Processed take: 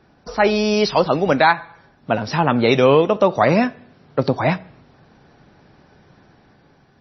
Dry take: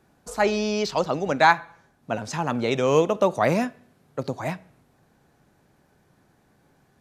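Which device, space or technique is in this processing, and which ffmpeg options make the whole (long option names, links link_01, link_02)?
low-bitrate web radio: -af "dynaudnorm=framelen=170:gausssize=9:maxgain=4dB,alimiter=limit=-9.5dB:level=0:latency=1:release=392,volume=7.5dB" -ar 22050 -c:a libmp3lame -b:a 24k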